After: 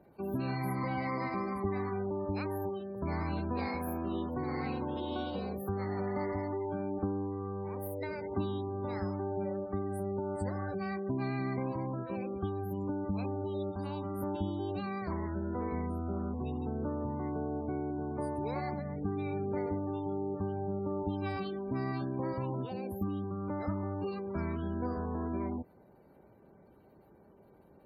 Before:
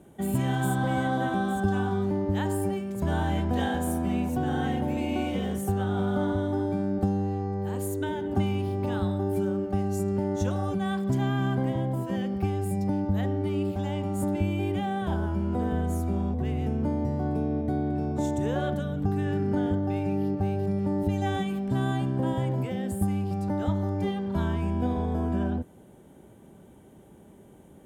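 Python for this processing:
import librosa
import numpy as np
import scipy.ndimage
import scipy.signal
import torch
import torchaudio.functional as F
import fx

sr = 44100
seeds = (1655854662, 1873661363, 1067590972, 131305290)

y = fx.formant_shift(x, sr, semitones=5)
y = fx.spec_gate(y, sr, threshold_db=-30, keep='strong')
y = y * librosa.db_to_amplitude(-8.0)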